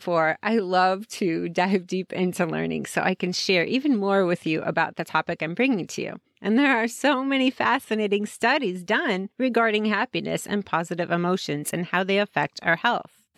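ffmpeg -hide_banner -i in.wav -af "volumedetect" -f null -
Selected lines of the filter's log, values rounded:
mean_volume: -24.0 dB
max_volume: -7.7 dB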